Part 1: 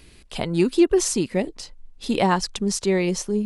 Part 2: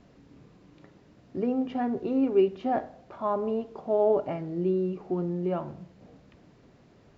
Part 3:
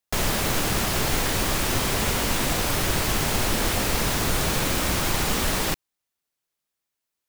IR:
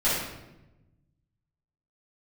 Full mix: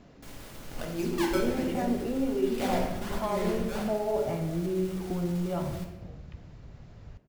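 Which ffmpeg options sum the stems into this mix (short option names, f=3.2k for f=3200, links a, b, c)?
-filter_complex "[0:a]acrusher=samples=26:mix=1:aa=0.000001:lfo=1:lforange=41.6:lforate=1.3,adelay=400,volume=-15.5dB,asplit=2[a][b];[b]volume=-10.5dB[c];[1:a]volume=2.5dB,asplit=2[d][e];[e]volume=-23.5dB[f];[2:a]alimiter=limit=-21.5dB:level=0:latency=1,adelay=100,volume=-19.5dB,asplit=2[g][h];[h]volume=-14.5dB[i];[a][d]amix=inputs=2:normalize=0,asubboost=boost=11.5:cutoff=84,acompressor=threshold=-30dB:ratio=6,volume=0dB[j];[3:a]atrim=start_sample=2205[k];[c][f][i]amix=inputs=3:normalize=0[l];[l][k]afir=irnorm=-1:irlink=0[m];[g][j][m]amix=inputs=3:normalize=0"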